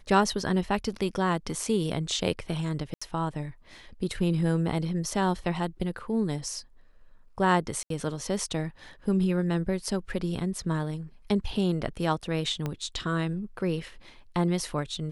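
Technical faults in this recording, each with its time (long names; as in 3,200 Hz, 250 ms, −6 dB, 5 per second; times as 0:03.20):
0:02.94–0:03.02: drop-out 75 ms
0:07.83–0:07.90: drop-out 73 ms
0:12.66: click −18 dBFS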